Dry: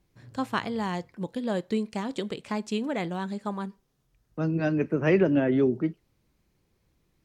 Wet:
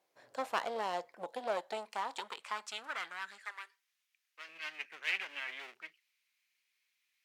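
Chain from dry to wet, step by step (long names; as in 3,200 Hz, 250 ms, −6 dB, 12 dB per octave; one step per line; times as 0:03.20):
asymmetric clip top −34.5 dBFS
high-pass filter sweep 620 Hz → 2,300 Hz, 0:01.26–0:04.09
0:03.44–0:04.49: Butterworth high-pass 310 Hz 48 dB per octave
level −3.5 dB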